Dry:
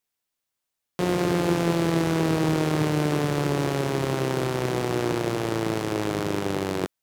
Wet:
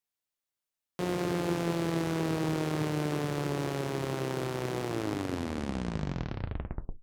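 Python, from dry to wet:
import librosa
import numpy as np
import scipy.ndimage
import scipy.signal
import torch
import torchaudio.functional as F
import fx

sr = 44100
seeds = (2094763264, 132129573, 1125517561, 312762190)

y = fx.tape_stop_end(x, sr, length_s=2.2)
y = y * 10.0 ** (-7.5 / 20.0)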